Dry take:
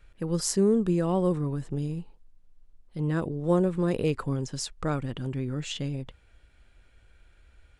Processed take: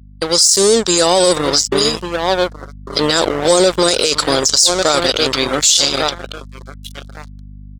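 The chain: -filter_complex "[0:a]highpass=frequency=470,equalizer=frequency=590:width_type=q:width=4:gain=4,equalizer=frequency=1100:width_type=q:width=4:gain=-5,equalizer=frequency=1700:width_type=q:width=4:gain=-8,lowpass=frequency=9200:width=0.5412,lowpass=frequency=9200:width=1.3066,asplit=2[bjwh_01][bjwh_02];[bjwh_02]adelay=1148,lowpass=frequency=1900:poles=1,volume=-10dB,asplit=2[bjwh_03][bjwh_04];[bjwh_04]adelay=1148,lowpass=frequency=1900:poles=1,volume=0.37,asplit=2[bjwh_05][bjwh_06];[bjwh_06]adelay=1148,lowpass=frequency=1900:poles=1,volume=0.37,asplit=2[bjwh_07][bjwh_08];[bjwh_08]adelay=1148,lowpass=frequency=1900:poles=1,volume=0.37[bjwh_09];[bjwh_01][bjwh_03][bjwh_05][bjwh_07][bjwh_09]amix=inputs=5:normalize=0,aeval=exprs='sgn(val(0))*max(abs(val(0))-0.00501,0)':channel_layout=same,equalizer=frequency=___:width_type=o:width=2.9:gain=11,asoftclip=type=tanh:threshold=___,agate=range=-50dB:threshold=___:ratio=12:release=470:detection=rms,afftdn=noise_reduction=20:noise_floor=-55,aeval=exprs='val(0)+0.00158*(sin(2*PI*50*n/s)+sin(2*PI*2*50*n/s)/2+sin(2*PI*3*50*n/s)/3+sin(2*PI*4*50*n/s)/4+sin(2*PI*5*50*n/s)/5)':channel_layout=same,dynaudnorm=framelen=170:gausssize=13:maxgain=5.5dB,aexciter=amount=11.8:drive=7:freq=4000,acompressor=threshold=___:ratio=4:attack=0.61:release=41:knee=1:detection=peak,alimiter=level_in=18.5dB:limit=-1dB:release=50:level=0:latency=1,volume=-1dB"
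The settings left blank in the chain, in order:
2500, -15.5dB, -56dB, -19dB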